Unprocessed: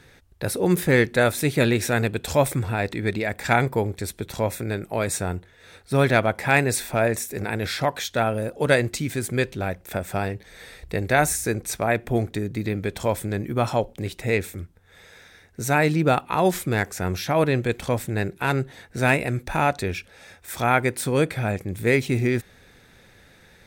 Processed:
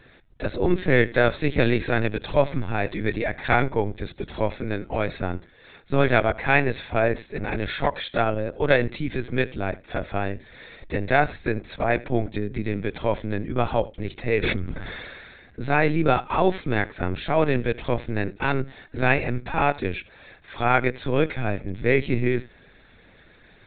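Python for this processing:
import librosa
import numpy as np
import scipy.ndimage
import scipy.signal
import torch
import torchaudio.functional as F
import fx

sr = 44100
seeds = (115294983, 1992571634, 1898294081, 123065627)

y = x + 10.0 ** (-21.0 / 20.0) * np.pad(x, (int(82 * sr / 1000.0), 0))[:len(x)]
y = fx.lpc_vocoder(y, sr, seeds[0], excitation='pitch_kept', order=16)
y = fx.sustainer(y, sr, db_per_s=29.0, at=(14.42, 15.68), fade=0.02)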